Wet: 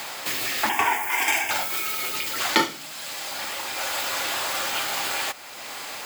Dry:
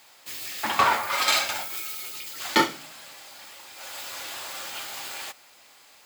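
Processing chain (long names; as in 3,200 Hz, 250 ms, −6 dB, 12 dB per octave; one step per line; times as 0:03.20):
0:00.69–0:01.51: phaser with its sweep stopped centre 840 Hz, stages 8
multiband upward and downward compressor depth 70%
level +6 dB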